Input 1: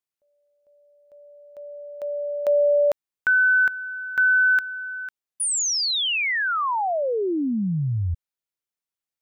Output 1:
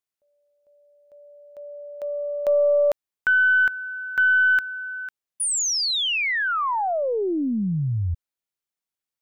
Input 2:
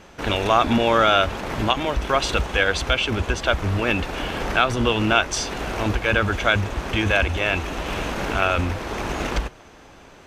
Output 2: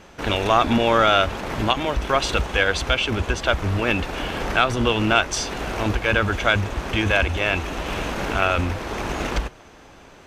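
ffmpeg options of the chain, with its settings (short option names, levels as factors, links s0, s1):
-af "aeval=exprs='0.794*(cos(1*acos(clip(val(0)/0.794,-1,1)))-cos(1*PI/2))+0.0282*(cos(4*acos(clip(val(0)/0.794,-1,1)))-cos(4*PI/2))':c=same"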